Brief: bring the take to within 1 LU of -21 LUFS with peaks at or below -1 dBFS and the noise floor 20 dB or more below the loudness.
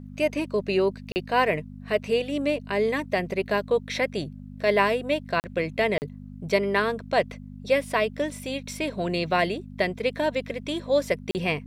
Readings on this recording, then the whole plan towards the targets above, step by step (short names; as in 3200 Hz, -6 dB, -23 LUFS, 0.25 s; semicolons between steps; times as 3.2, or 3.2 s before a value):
dropouts 4; longest dropout 39 ms; hum 50 Hz; harmonics up to 250 Hz; hum level -39 dBFS; loudness -26.0 LUFS; peak -7.5 dBFS; loudness target -21.0 LUFS
-> interpolate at 1.12/5.4/5.98/11.31, 39 ms; de-hum 50 Hz, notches 5; gain +5 dB